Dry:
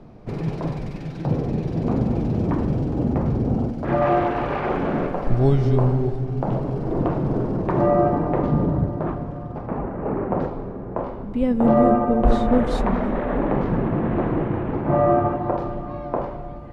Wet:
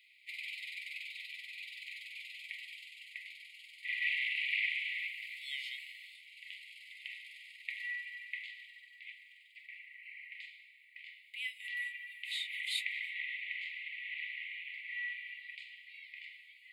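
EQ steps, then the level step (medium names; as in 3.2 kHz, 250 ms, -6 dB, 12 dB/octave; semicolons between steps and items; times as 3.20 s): brick-wall FIR high-pass 1.9 kHz; static phaser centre 2.5 kHz, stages 4; +8.0 dB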